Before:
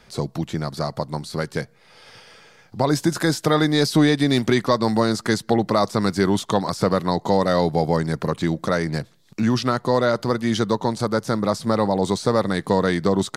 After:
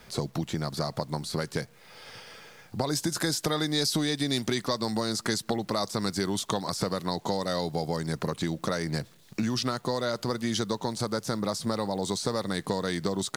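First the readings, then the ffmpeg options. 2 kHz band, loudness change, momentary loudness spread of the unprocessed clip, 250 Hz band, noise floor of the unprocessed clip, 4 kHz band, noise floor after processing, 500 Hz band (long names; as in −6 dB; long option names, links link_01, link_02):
−8.5 dB, −8.5 dB, 9 LU, −9.5 dB, −53 dBFS, −2.5 dB, −56 dBFS, −10.0 dB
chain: -filter_complex "[0:a]acrossover=split=3600[link_01][link_02];[link_01]acompressor=threshold=-26dB:ratio=6[link_03];[link_03][link_02]amix=inputs=2:normalize=0,acrusher=bits=9:mix=0:aa=0.000001"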